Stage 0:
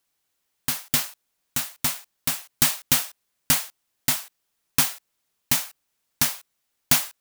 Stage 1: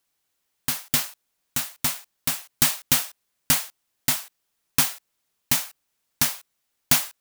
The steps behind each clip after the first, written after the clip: no audible change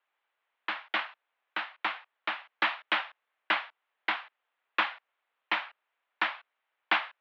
mistuned SSB +65 Hz 150–3600 Hz; three-band isolator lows -23 dB, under 560 Hz, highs -17 dB, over 2.6 kHz; trim +4.5 dB

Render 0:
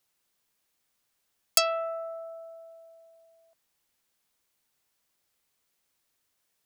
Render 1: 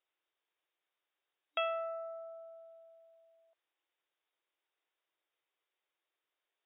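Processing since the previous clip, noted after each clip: FFT band-pass 300–3800 Hz; trim -6.5 dB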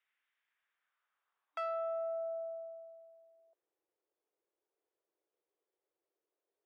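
saturation -36.5 dBFS, distortion -7 dB; band-pass sweep 1.9 kHz -> 410 Hz, 0.40–3.35 s; trim +10 dB

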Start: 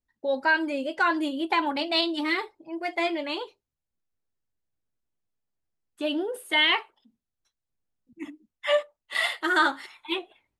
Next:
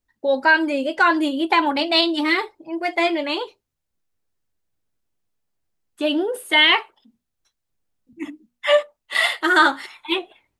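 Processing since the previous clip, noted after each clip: hum notches 60/120/180/240 Hz; trim +7 dB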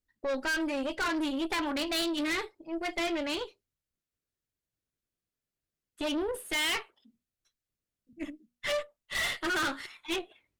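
peaking EQ 870 Hz -8.5 dB 0.53 oct; valve stage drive 24 dB, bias 0.65; trim -3.5 dB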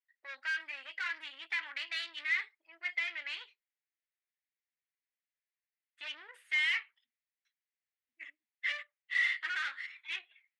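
ladder band-pass 2.2 kHz, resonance 60%; trim +6 dB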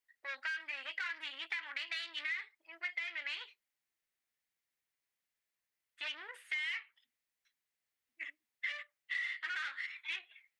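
compression 6:1, threshold -41 dBFS, peak gain reduction 14 dB; trim +4.5 dB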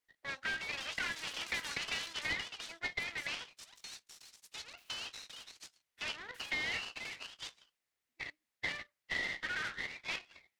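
ever faster or slower copies 291 ms, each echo +6 st, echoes 3, each echo -6 dB; delay time shaken by noise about 1.6 kHz, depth 0.031 ms; trim +1 dB

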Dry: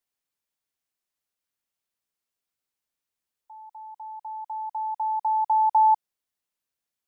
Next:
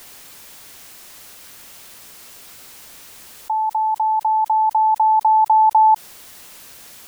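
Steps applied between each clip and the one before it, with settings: level flattener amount 70%; trim +5.5 dB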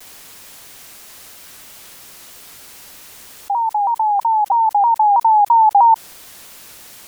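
vibrato with a chosen wave saw down 3.1 Hz, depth 160 cents; trim +2 dB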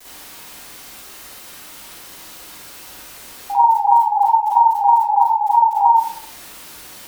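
peak limiter -15.5 dBFS, peak gain reduction 10.5 dB; reverberation RT60 0.55 s, pre-delay 35 ms, DRR -7.5 dB; trim -4.5 dB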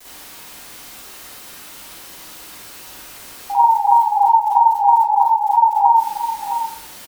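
delay 662 ms -9.5 dB

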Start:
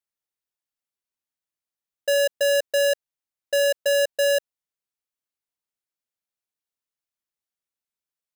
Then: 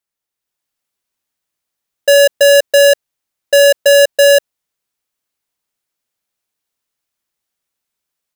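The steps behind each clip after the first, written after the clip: level rider gain up to 6 dB; trim +6.5 dB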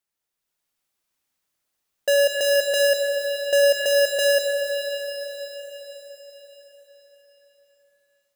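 peak limiter -16 dBFS, peak gain reduction 9.5 dB; on a send at -2.5 dB: reverberation RT60 5.0 s, pre-delay 35 ms; on the sum: trim -1.5 dB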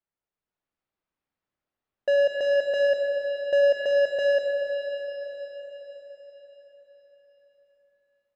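tape spacing loss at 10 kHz 37 dB

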